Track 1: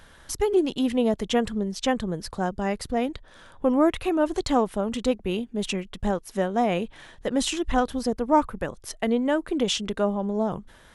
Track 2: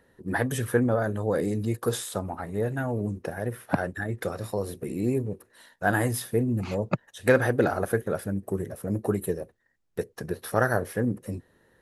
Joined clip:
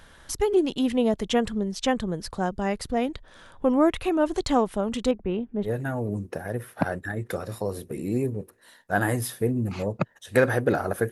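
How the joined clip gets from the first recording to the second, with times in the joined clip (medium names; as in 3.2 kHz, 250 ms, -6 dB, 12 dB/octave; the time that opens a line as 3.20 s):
track 1
5.11–5.70 s: low-pass 1.7 kHz 12 dB/octave
5.66 s: go over to track 2 from 2.58 s, crossfade 0.08 s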